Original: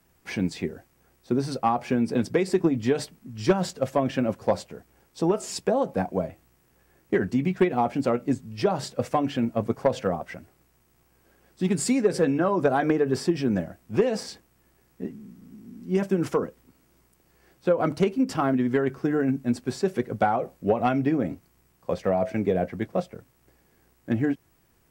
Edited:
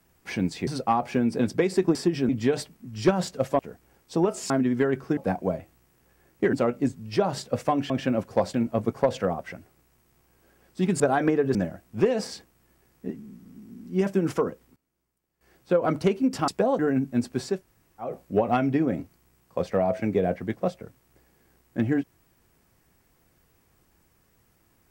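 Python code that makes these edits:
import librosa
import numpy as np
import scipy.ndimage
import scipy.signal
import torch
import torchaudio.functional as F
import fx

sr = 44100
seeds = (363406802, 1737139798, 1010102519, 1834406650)

y = fx.edit(x, sr, fx.cut(start_s=0.67, length_s=0.76),
    fx.move(start_s=4.01, length_s=0.64, to_s=9.36),
    fx.swap(start_s=5.56, length_s=0.31, other_s=18.44, other_length_s=0.67),
    fx.cut(start_s=7.23, length_s=0.76),
    fx.cut(start_s=11.82, length_s=0.8),
    fx.move(start_s=13.17, length_s=0.34, to_s=2.71),
    fx.fade_down_up(start_s=16.25, length_s=1.59, db=-17.5, fade_s=0.47, curve='log'),
    fx.room_tone_fill(start_s=19.88, length_s=0.5, crossfade_s=0.16), tone=tone)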